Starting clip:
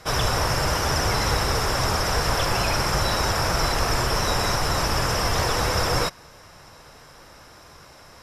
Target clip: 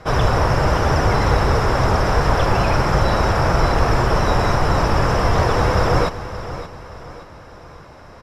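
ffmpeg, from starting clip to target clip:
ffmpeg -i in.wav -filter_complex "[0:a]lowpass=frequency=1100:poles=1,asplit=2[link_01][link_02];[link_02]aecho=0:1:573|1146|1719|2292:0.224|0.0873|0.0341|0.0133[link_03];[link_01][link_03]amix=inputs=2:normalize=0,volume=8dB" out.wav

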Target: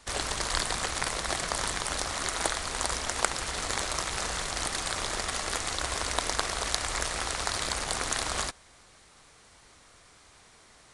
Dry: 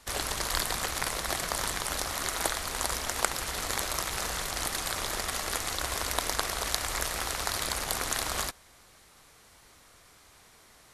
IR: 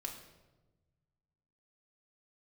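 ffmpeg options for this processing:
-af "aresample=22050,aresample=44100,volume=1dB"

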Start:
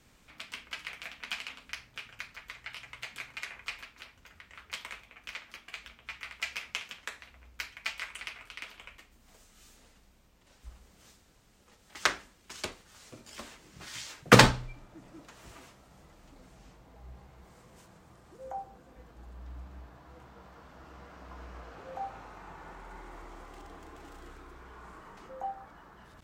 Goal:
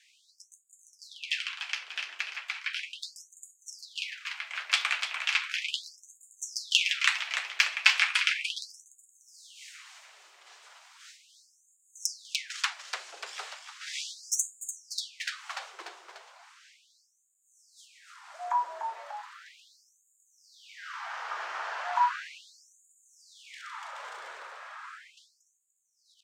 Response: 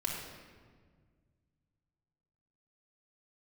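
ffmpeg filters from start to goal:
-filter_complex "[0:a]acrossover=split=530 7800:gain=0.224 1 0.158[link_01][link_02][link_03];[link_01][link_02][link_03]amix=inputs=3:normalize=0,acrossover=split=390[link_04][link_05];[link_05]dynaudnorm=framelen=530:gausssize=13:maxgain=10dB[link_06];[link_04][link_06]amix=inputs=2:normalize=0,afreqshift=190,aeval=exprs='clip(val(0),-1,0.335)':channel_layout=same,asplit=7[link_07][link_08][link_09][link_10][link_11][link_12][link_13];[link_08]adelay=294,afreqshift=-69,volume=-7.5dB[link_14];[link_09]adelay=588,afreqshift=-138,volume=-13.5dB[link_15];[link_10]adelay=882,afreqshift=-207,volume=-19.5dB[link_16];[link_11]adelay=1176,afreqshift=-276,volume=-25.6dB[link_17];[link_12]adelay=1470,afreqshift=-345,volume=-31.6dB[link_18];[link_13]adelay=1764,afreqshift=-414,volume=-37.6dB[link_19];[link_07][link_14][link_15][link_16][link_17][link_18][link_19]amix=inputs=7:normalize=0,asplit=2[link_20][link_21];[1:a]atrim=start_sample=2205[link_22];[link_21][link_22]afir=irnorm=-1:irlink=0,volume=-24.5dB[link_23];[link_20][link_23]amix=inputs=2:normalize=0,afftfilt=real='re*gte(b*sr/1024,310*pow(6700/310,0.5+0.5*sin(2*PI*0.36*pts/sr)))':imag='im*gte(b*sr/1024,310*pow(6700/310,0.5+0.5*sin(2*PI*0.36*pts/sr)))':win_size=1024:overlap=0.75,volume=5dB"

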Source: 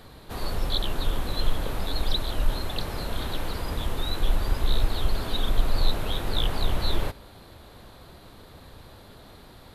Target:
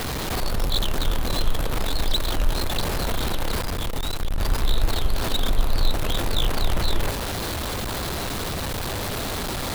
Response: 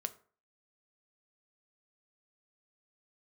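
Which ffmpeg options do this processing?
-filter_complex "[0:a]aeval=exprs='val(0)+0.5*0.075*sgn(val(0))':channel_layout=same,asettb=1/sr,asplit=3[link_01][link_02][link_03];[link_01]atrim=end=3.614[link_04];[link_02]atrim=start=3.61:end=4.38,asetpts=PTS-STARTPTS,afade=type=in:duration=0.004:curve=qsin,afade=type=out:start_time=0.766:duration=0.004:curve=qsin,aeval=exprs='(tanh(10*val(0)+0.55)-tanh(0.55))/10':channel_layout=same[link_05];[link_03]atrim=start=4.376[link_06];[link_04][link_05]acrossfade=duration=0.004:curve1=hsin:curve2=qsin[link_07];[link_07][link_06]acrossfade=duration=0.004:curve1=qsin:curve2=hsin"

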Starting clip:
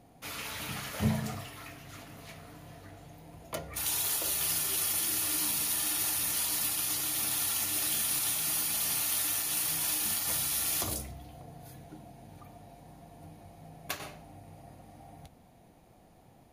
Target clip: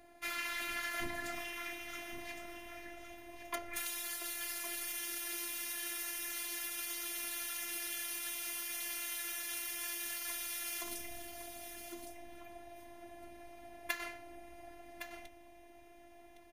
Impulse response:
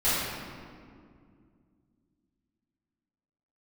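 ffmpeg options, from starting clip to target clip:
-filter_complex "[0:a]afftfilt=real='hypot(re,im)*cos(PI*b)':imag='0':win_size=512:overlap=0.75,acompressor=threshold=-37dB:ratio=6,equalizer=frequency=1900:width=1.6:gain=11.5,asplit=2[link_01][link_02];[link_02]aecho=0:1:1112:0.335[link_03];[link_01][link_03]amix=inputs=2:normalize=0,volume=1dB"

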